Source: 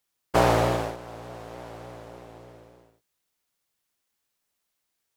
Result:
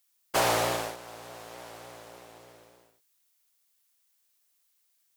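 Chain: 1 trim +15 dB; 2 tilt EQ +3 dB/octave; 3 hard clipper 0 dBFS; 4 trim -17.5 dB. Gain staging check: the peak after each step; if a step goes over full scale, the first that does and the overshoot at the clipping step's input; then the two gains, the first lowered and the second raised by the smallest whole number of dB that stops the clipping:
+9.5 dBFS, +8.5 dBFS, 0.0 dBFS, -17.5 dBFS; step 1, 8.5 dB; step 1 +6 dB, step 4 -8.5 dB

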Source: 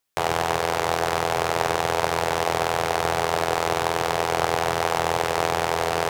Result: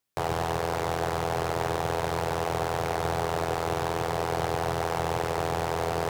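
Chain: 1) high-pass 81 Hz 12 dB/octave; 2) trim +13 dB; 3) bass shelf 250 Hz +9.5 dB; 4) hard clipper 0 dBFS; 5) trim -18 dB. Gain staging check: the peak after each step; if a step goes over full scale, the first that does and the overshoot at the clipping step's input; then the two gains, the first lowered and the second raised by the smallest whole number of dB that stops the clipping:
-4.0 dBFS, +9.0 dBFS, +9.5 dBFS, 0.0 dBFS, -18.0 dBFS; step 2, 9.5 dB; step 2 +3 dB, step 5 -8 dB

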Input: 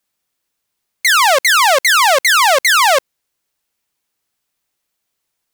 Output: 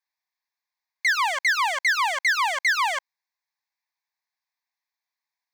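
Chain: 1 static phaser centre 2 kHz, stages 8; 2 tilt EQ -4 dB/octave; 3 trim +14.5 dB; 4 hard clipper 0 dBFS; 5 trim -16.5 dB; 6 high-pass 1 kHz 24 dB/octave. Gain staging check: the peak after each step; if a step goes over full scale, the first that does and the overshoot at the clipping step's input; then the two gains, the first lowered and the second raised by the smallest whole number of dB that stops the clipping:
-5.5 dBFS, -6.0 dBFS, +8.5 dBFS, 0.0 dBFS, -16.5 dBFS, -13.5 dBFS; step 3, 8.5 dB; step 3 +5.5 dB, step 5 -7.5 dB

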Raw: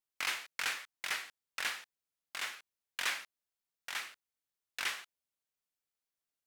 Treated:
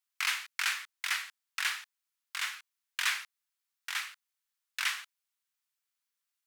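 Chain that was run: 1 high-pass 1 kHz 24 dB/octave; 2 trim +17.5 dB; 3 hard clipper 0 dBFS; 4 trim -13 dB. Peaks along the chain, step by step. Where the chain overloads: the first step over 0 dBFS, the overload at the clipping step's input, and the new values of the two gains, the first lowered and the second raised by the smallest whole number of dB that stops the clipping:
-21.0 dBFS, -3.5 dBFS, -3.5 dBFS, -16.5 dBFS; nothing clips

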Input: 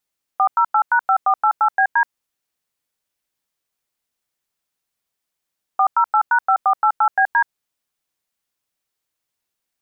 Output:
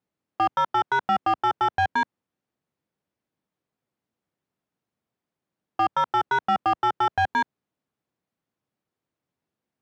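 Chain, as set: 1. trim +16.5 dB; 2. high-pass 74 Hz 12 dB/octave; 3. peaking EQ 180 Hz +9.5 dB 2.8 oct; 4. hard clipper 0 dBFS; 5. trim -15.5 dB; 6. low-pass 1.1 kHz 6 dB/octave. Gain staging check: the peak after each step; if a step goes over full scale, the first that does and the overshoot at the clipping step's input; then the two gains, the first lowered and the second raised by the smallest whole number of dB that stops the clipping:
+8.0 dBFS, +8.0 dBFS, +10.0 dBFS, 0.0 dBFS, -15.5 dBFS, -16.0 dBFS; step 1, 10.0 dB; step 1 +6.5 dB, step 5 -5.5 dB

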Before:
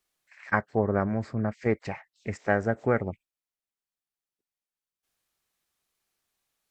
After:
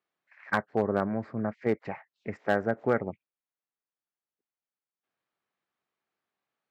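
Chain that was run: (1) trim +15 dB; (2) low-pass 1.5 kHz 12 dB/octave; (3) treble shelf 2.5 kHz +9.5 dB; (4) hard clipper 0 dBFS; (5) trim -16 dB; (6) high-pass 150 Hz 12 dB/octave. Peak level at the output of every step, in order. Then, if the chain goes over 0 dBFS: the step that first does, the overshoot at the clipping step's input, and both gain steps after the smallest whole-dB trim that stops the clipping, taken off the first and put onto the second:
+8.0 dBFS, +6.5 dBFS, +8.0 dBFS, 0.0 dBFS, -16.0 dBFS, -11.5 dBFS; step 1, 8.0 dB; step 1 +7 dB, step 5 -8 dB

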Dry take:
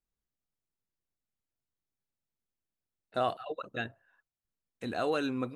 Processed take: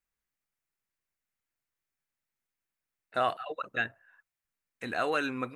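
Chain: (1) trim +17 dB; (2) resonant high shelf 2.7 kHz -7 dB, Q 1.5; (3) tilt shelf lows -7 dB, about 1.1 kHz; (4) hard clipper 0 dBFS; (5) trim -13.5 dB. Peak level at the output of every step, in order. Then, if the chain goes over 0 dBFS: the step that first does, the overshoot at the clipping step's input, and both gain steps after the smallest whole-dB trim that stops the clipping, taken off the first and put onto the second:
-1.0 dBFS, -0.5 dBFS, -2.0 dBFS, -2.0 dBFS, -15.5 dBFS; nothing clips

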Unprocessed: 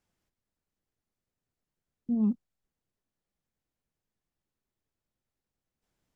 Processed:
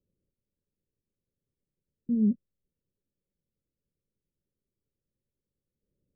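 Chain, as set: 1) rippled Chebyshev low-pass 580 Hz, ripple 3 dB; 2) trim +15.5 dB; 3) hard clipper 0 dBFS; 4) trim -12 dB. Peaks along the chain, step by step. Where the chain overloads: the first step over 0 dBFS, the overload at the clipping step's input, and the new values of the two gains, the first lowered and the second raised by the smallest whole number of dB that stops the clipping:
-21.0 dBFS, -5.5 dBFS, -5.5 dBFS, -17.5 dBFS; nothing clips

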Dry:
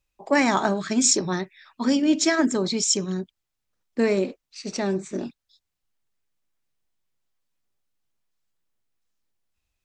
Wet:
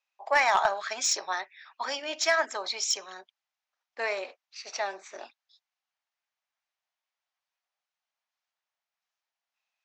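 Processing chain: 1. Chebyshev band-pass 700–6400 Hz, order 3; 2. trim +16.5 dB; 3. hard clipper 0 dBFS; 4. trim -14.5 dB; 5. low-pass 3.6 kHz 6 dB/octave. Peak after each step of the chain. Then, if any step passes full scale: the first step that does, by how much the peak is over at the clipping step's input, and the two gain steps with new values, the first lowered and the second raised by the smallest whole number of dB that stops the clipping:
-8.0 dBFS, +8.5 dBFS, 0.0 dBFS, -14.5 dBFS, -14.5 dBFS; step 2, 8.5 dB; step 2 +7.5 dB, step 4 -5.5 dB

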